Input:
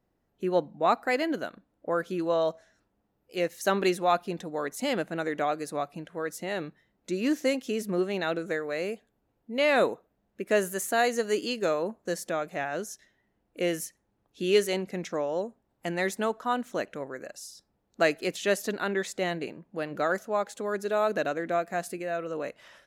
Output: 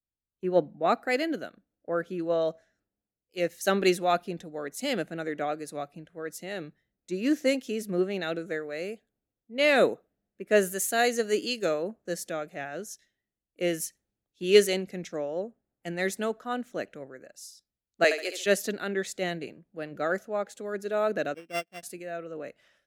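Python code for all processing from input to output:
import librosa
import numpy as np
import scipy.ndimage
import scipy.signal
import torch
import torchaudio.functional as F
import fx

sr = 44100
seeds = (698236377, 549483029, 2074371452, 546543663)

y = fx.chain(x, sr, fx.highpass(hz=400.0, slope=24),
    fx.room_flutter(wall_m=11.9, rt60_s=0.55), at=(18.04, 18.46))
y = fx.chain(y, sr, fx.sample_sort(block=16),
    fx.high_shelf(hz=4600.0, db=-10.5),
    fx.upward_expand(threshold_db=-43.0, expansion=2.5), at=(21.34, 21.83))
y = fx.peak_eq(y, sr, hz=980.0, db=-10.5, octaves=0.49)
y = fx.band_widen(y, sr, depth_pct=70)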